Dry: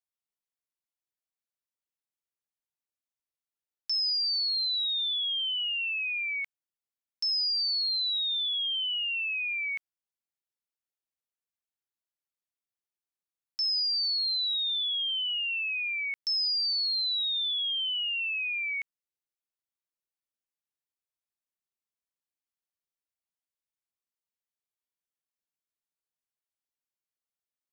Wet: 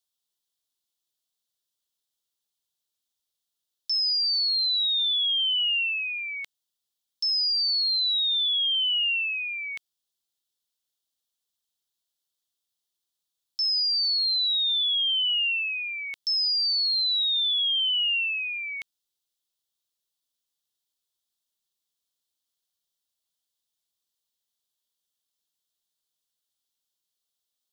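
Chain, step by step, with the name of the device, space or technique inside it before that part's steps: over-bright horn tweeter (resonant high shelf 2.8 kHz +6.5 dB, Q 3; peak limiter -25 dBFS, peak gain reduction 10.5 dB); 15.34–16.09 s: high-pass 1.1 kHz; trim +3.5 dB

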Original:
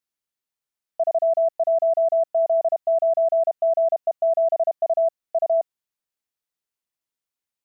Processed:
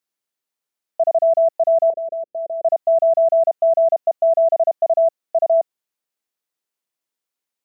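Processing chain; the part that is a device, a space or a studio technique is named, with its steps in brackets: filter by subtraction (in parallel: low-pass 350 Hz 12 dB/octave + polarity flip); 1.90–2.64 s: on the sum: steep low-pass 540 Hz 36 dB/octave; trim +3 dB

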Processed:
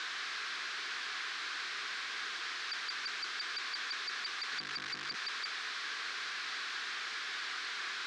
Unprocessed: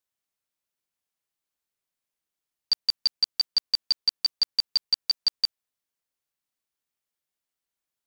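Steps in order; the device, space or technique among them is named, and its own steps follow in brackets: 4.52–5.15 s: hum notches 50/100/150 Hz; home computer beeper (one-bit comparator; cabinet simulation 680–4400 Hz, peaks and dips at 760 Hz +6 dB, 1.6 kHz +6 dB, 2.9 kHz -4 dB); high-order bell 690 Hz -14.5 dB 1 oct; trim +1 dB

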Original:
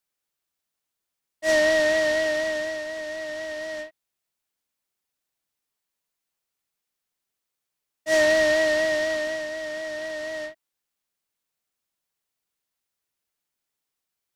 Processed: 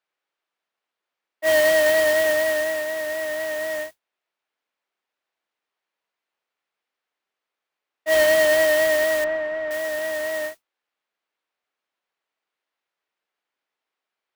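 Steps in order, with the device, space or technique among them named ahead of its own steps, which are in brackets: carbon microphone (band-pass 390–2700 Hz; saturation -19.5 dBFS, distortion -14 dB; modulation noise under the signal 13 dB); 9.24–9.71 s: low-pass 2 kHz 12 dB/octave; trim +6.5 dB

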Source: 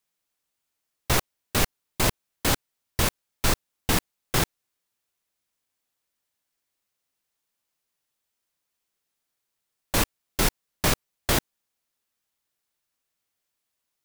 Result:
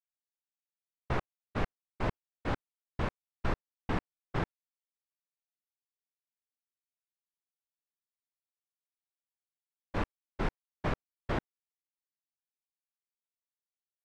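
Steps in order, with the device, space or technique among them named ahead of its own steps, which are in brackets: hearing-loss simulation (low-pass 1.7 kHz 12 dB/octave; expander -24 dBFS); trim -7 dB

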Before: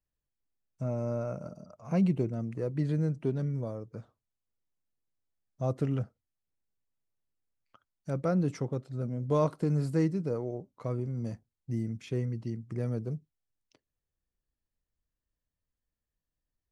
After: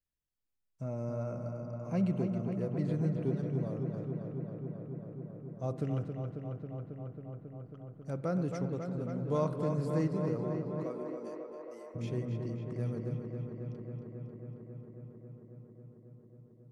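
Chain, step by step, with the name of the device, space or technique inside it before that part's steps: dub delay into a spring reverb (filtered feedback delay 272 ms, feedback 84%, low-pass 4.1 kHz, level -6 dB; spring tank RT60 1.9 s, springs 51 ms, chirp 45 ms, DRR 12.5 dB); 10.83–11.94 s: high-pass 210 Hz -> 500 Hz 24 dB/octave; trim -5 dB

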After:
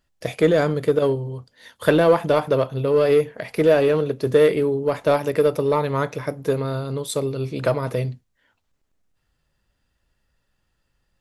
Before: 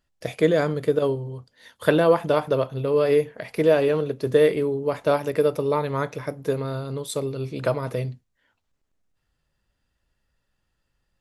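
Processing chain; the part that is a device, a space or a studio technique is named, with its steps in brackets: parallel distortion (in parallel at -6.5 dB: hard clipper -18.5 dBFS, distortion -9 dB)

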